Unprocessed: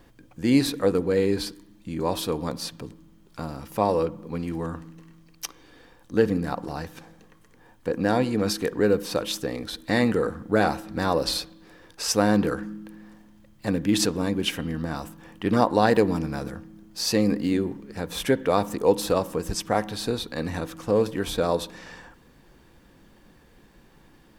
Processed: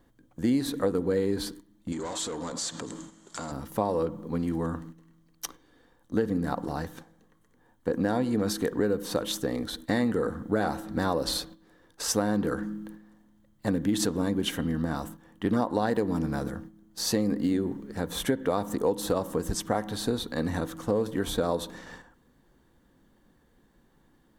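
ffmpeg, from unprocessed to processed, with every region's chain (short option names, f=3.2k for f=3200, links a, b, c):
-filter_complex "[0:a]asettb=1/sr,asplit=3[a][b][c];[a]atrim=end=1.924[d];[b]atrim=start=1.92:end=3.52,asetpts=PTS-STARTPTS,afade=t=in:d=0.004:c=qsin,afade=t=out:st=1.596:d=0.004:c=qsin,asplit=2[e][f];[f]highpass=f=720:p=1,volume=24dB,asoftclip=type=tanh:threshold=-11.5dB[g];[e][g]amix=inputs=2:normalize=0,lowpass=f=5.7k:p=1,volume=-6dB,acompressor=threshold=-34dB:ratio=6:attack=3.2:release=140:knee=1:detection=peak,lowpass=f=7.4k:t=q:w=6.1[h];[c]atrim=start=3.516[i];[d][h]acrossfade=d=0.004:c1=hsin:c2=qsin[j];[j][i]acrossfade=d=0.004:c1=qsin:c2=hsin,agate=range=-9dB:threshold=-43dB:ratio=16:detection=peak,equalizer=f=250:t=o:w=0.33:g=4,equalizer=f=2.5k:t=o:w=0.33:g=-10,equalizer=f=5k:t=o:w=0.33:g=-6,acompressor=threshold=-22dB:ratio=6"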